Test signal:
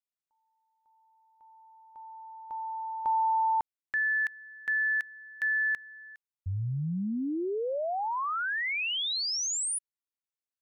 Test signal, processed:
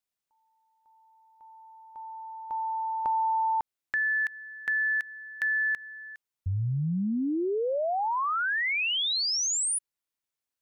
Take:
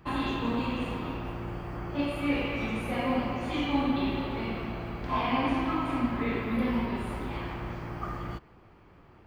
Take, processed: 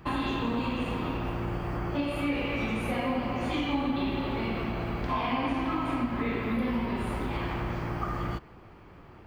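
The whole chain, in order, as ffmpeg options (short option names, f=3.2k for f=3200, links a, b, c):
-af "acompressor=threshold=-31dB:ratio=3:attack=5.8:release=444:knee=1:detection=peak,volume=5dB"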